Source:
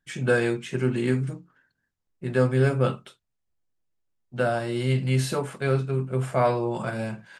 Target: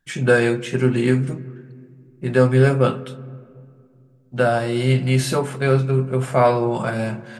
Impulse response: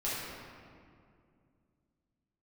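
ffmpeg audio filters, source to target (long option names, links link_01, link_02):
-filter_complex "[0:a]asplit=2[link_01][link_02];[1:a]atrim=start_sample=2205,highshelf=frequency=4100:gain=-10[link_03];[link_02][link_03]afir=irnorm=-1:irlink=0,volume=-22dB[link_04];[link_01][link_04]amix=inputs=2:normalize=0,volume=6dB"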